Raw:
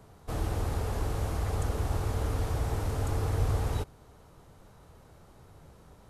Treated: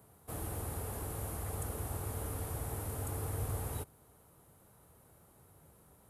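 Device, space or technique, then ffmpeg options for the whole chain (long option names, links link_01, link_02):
budget condenser microphone: -af "highpass=69,highshelf=frequency=7800:width_type=q:width=1.5:gain=12.5,volume=-7.5dB"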